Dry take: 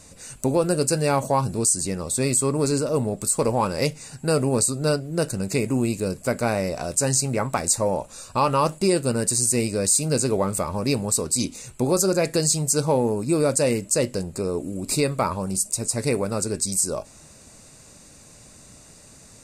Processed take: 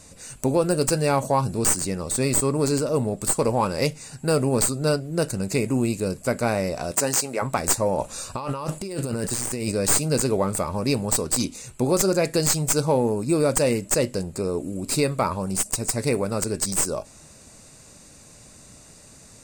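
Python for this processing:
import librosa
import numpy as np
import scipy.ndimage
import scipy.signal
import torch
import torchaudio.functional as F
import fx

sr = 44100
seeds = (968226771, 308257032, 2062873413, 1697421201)

y = fx.tracing_dist(x, sr, depth_ms=0.044)
y = fx.highpass(y, sr, hz=fx.line((6.91, 150.0), (7.41, 410.0)), slope=12, at=(6.91, 7.41), fade=0.02)
y = fx.over_compress(y, sr, threshold_db=-28.0, ratio=-1.0, at=(7.98, 9.72))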